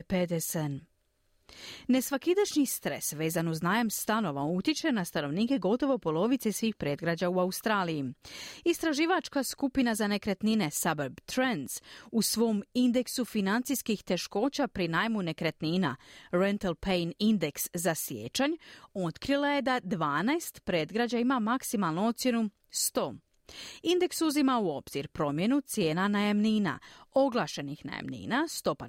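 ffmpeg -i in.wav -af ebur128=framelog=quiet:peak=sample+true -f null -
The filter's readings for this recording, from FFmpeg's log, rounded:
Integrated loudness:
  I:         -29.9 LUFS
  Threshold: -40.2 LUFS
Loudness range:
  LRA:         1.5 LU
  Threshold: -50.1 LUFS
  LRA low:   -30.8 LUFS
  LRA high:  -29.4 LUFS
Sample peak:
  Peak:      -14.8 dBFS
True peak:
  Peak:      -14.8 dBFS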